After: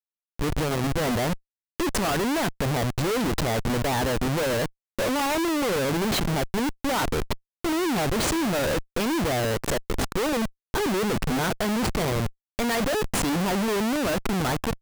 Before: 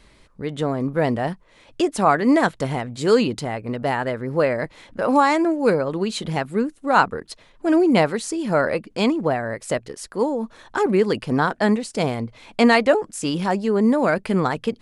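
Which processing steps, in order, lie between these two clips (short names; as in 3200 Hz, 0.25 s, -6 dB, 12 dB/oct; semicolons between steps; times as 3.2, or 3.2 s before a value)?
7.02–8.07 delta modulation 32 kbps, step -31 dBFS; Schmitt trigger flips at -29.5 dBFS; gain -3 dB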